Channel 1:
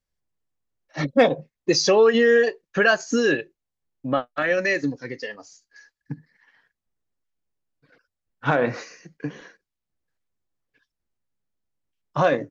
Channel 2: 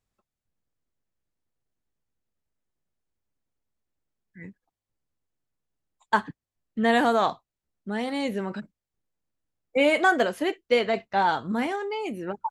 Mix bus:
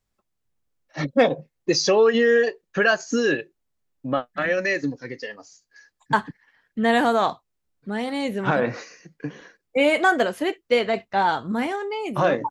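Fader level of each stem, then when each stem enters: -1.0 dB, +2.0 dB; 0.00 s, 0.00 s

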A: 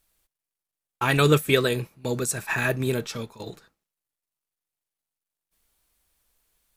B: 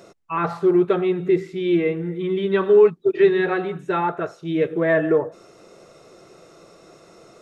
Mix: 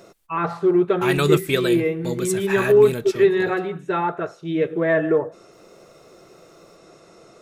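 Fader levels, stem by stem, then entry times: -1.0 dB, -0.5 dB; 0.00 s, 0.00 s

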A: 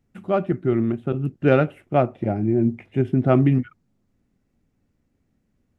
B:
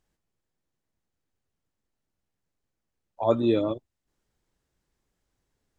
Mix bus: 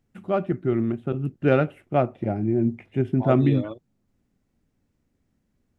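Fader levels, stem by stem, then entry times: -2.5 dB, -6.5 dB; 0.00 s, 0.00 s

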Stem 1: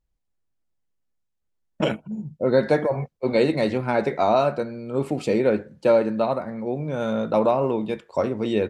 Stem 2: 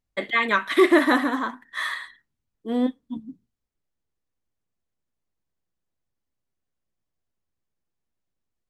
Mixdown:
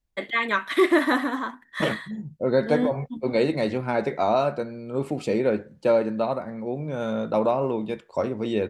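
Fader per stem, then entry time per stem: -2.5 dB, -2.5 dB; 0.00 s, 0.00 s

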